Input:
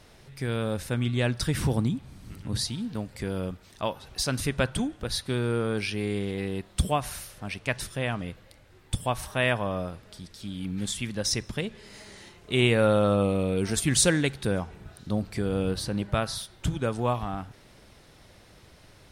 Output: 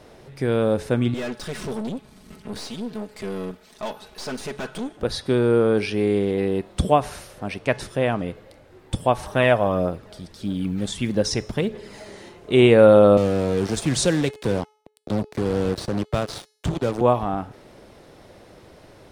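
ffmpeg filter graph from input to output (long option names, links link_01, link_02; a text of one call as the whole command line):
ffmpeg -i in.wav -filter_complex "[0:a]asettb=1/sr,asplit=3[link_01][link_02][link_03];[link_01]atrim=end=1.144[link_04];[link_02]atrim=start=1.14:end=4.97,asetpts=PTS-STARTPTS,afade=type=in:duration=0.004:curve=qsin,afade=type=out:start_time=3.826:duration=0.004:curve=qsin,tiltshelf=frequency=1200:gain=-5,aecho=1:1:4.7:0.83,atrim=end_sample=168903,aeval=exprs='(tanh(50.1*val(0)+0.75)-tanh(0.75))/50.1':channel_layout=same[link_05];[link_03]atrim=start=4.966[link_06];[link_04][link_05]acrossfade=duration=0.004:curve1=hsin:curve2=qsin[link_07];[link_07][link_06]acrossfade=duration=0.004:curve1=qsin:curve2=hsin,asettb=1/sr,asplit=3[link_08][link_09][link_10];[link_08]atrim=end=9.264[link_11];[link_09]atrim=start=9.26:end=12.09,asetpts=PTS-STARTPTS,afade=type=in:duration=0.004:curve=qsin,afade=type=out:start_time=2.826:duration=0.004:curve=qsin,aphaser=in_gain=1:out_gain=1:delay=1.7:decay=0.35:speed=1.6:type=triangular,acrusher=bits=9:mode=log:mix=0:aa=0.000001[link_12];[link_10]atrim=start=12.086[link_13];[link_11][link_12]acrossfade=duration=0.004:curve1=hsin:curve2=qsin[link_14];[link_14][link_13]acrossfade=duration=0.004:curve1=qsin:curve2=hsin,asettb=1/sr,asplit=3[link_15][link_16][link_17];[link_15]atrim=end=13.174[link_18];[link_16]atrim=start=13.17:end=17.01,asetpts=PTS-STARTPTS,afade=type=in:duration=0.004:curve=qsin,afade=type=out:start_time=3.836:duration=0.004:curve=qsin,acrusher=bits=4:mix=0:aa=0.5,acrossover=split=160|3000[link_19][link_20][link_21];[link_20]acompressor=threshold=-39dB:ratio=1.5:attack=3.2:release=140:knee=2.83:detection=peak[link_22];[link_19][link_22][link_21]amix=inputs=3:normalize=0[link_23];[link_17]atrim=start=17.006[link_24];[link_18][link_23]acrossfade=duration=0.004:curve1=hsin:curve2=qsin[link_25];[link_25][link_24]acrossfade=duration=0.004:curve1=qsin:curve2=hsin,acrossover=split=9000[link_26][link_27];[link_27]acompressor=threshold=-54dB:ratio=4:attack=1:release=60[link_28];[link_26][link_28]amix=inputs=2:normalize=0,equalizer=frequency=460:width=0.46:gain=11.5,bandreject=frequency=427:width_type=h:width=4,bandreject=frequency=854:width_type=h:width=4,bandreject=frequency=1281:width_type=h:width=4,bandreject=frequency=1708:width_type=h:width=4,bandreject=frequency=2135:width_type=h:width=4,bandreject=frequency=2562:width_type=h:width=4,bandreject=frequency=2989:width_type=h:width=4,bandreject=frequency=3416:width_type=h:width=4,bandreject=frequency=3843:width_type=h:width=4,bandreject=frequency=4270:width_type=h:width=4,bandreject=frequency=4697:width_type=h:width=4,bandreject=frequency=5124:width_type=h:width=4,bandreject=frequency=5551:width_type=h:width=4,bandreject=frequency=5978:width_type=h:width=4,bandreject=frequency=6405:width_type=h:width=4,bandreject=frequency=6832:width_type=h:width=4,bandreject=frequency=7259:width_type=h:width=4,bandreject=frequency=7686:width_type=h:width=4,bandreject=frequency=8113:width_type=h:width=4,bandreject=frequency=8540:width_type=h:width=4,bandreject=frequency=8967:width_type=h:width=4,bandreject=frequency=9394:width_type=h:width=4,bandreject=frequency=9821:width_type=h:width=4,bandreject=frequency=10248:width_type=h:width=4,bandreject=frequency=10675:width_type=h:width=4,bandreject=frequency=11102:width_type=h:width=4,bandreject=frequency=11529:width_type=h:width=4,bandreject=frequency=11956:width_type=h:width=4,bandreject=frequency=12383:width_type=h:width=4,bandreject=frequency=12810:width_type=h:width=4,bandreject=frequency=13237:width_type=h:width=4,bandreject=frequency=13664:width_type=h:width=4,bandreject=frequency=14091:width_type=h:width=4" out.wav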